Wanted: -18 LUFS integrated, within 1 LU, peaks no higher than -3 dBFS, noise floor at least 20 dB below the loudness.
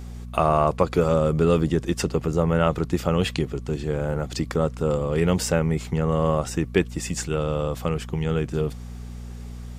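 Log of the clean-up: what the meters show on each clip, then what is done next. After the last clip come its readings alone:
tick rate 25 per s; hum 60 Hz; highest harmonic 240 Hz; hum level -34 dBFS; loudness -24.0 LUFS; peak level -4.0 dBFS; loudness target -18.0 LUFS
-> de-click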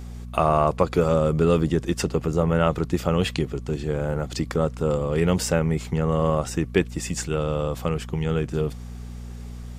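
tick rate 0 per s; hum 60 Hz; highest harmonic 240 Hz; hum level -34 dBFS
-> de-hum 60 Hz, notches 4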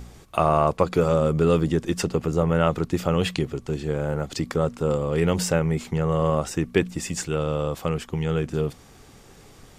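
hum not found; loudness -24.0 LUFS; peak level -4.5 dBFS; loudness target -18.0 LUFS
-> trim +6 dB; peak limiter -3 dBFS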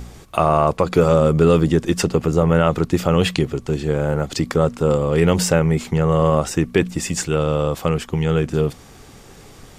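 loudness -18.5 LUFS; peak level -3.0 dBFS; noise floor -44 dBFS

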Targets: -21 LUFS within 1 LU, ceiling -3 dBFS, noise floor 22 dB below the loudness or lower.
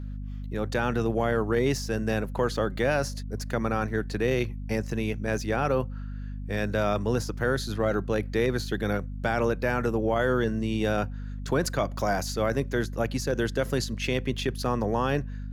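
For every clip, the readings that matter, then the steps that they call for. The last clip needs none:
hum 50 Hz; highest harmonic 250 Hz; hum level -32 dBFS; loudness -28.0 LUFS; peak level -12.5 dBFS; loudness target -21.0 LUFS
-> de-hum 50 Hz, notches 5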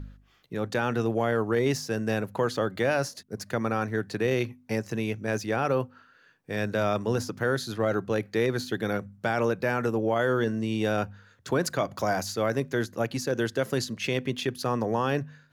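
hum not found; loudness -28.5 LUFS; peak level -14.0 dBFS; loudness target -21.0 LUFS
-> trim +7.5 dB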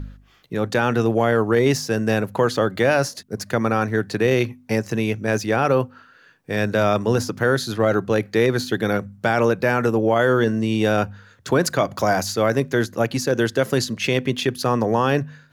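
loudness -21.0 LUFS; peak level -6.5 dBFS; noise floor -53 dBFS

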